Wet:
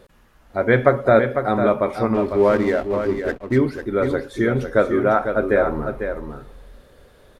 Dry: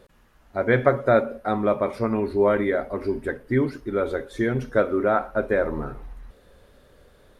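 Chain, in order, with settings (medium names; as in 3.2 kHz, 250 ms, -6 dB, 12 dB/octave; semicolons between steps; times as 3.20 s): 2.14–3.58 s: hysteresis with a dead band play -31.5 dBFS; delay 500 ms -7.5 dB; trim +3.5 dB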